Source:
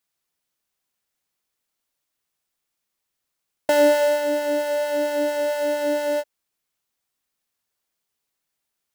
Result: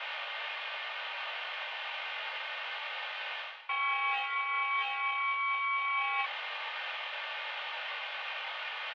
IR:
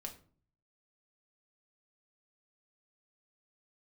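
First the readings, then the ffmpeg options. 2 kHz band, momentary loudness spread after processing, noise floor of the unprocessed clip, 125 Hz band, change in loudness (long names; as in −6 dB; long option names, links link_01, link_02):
+1.5 dB, 7 LU, −81 dBFS, can't be measured, −12.0 dB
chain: -af "aeval=exprs='val(0)+0.5*0.0266*sgn(val(0))':channel_layout=same,flanger=delay=19:depth=3.2:speed=0.27,tiltshelf=frequency=900:gain=-9.5,bandreject=frequency=1800:width=14,aecho=1:1:3.2:0.84,aeval=exprs='val(0)*sin(2*PI*1500*n/s)':channel_layout=same,aeval=exprs='0.668*(cos(1*acos(clip(val(0)/0.668,-1,1)))-cos(1*PI/2))+0.168*(cos(4*acos(clip(val(0)/0.668,-1,1)))-cos(4*PI/2))':channel_layout=same,acontrast=78,highpass=frequency=370:width_type=q:width=0.5412,highpass=frequency=370:width_type=q:width=1.307,lowpass=frequency=2900:width_type=q:width=0.5176,lowpass=frequency=2900:width_type=q:width=0.7071,lowpass=frequency=2900:width_type=q:width=1.932,afreqshift=190,areverse,acompressor=threshold=-29dB:ratio=12,areverse"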